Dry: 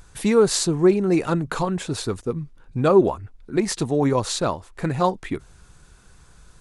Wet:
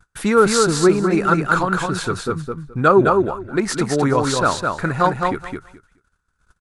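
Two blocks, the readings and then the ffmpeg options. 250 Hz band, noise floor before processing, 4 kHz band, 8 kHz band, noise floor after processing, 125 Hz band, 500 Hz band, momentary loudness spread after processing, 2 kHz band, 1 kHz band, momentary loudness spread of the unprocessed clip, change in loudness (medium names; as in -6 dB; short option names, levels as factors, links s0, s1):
+2.5 dB, -52 dBFS, +3.0 dB, +2.5 dB, -71 dBFS, +2.5 dB, +2.5 dB, 11 LU, +11.5 dB, +8.5 dB, 13 LU, +3.5 dB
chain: -filter_complex "[0:a]agate=range=0.0282:threshold=0.00631:ratio=16:detection=peak,equalizer=f=1400:w=2.6:g=14,asplit=2[s0][s1];[s1]aecho=0:1:212|424|636:0.631|0.101|0.0162[s2];[s0][s2]amix=inputs=2:normalize=0,volume=1.12"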